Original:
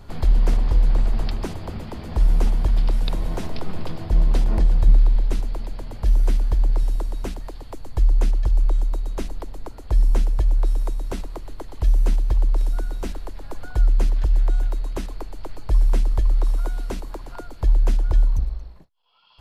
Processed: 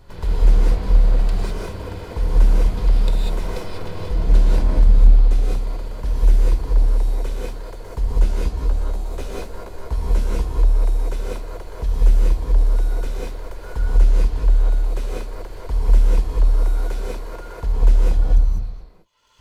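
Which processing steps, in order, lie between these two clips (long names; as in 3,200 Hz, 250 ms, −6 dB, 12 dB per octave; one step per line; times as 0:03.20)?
lower of the sound and its delayed copy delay 2 ms
0:08.04–0:10.45: double-tracking delay 15 ms −5 dB
reverb whose tail is shaped and stops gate 220 ms rising, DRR −4.5 dB
level −3 dB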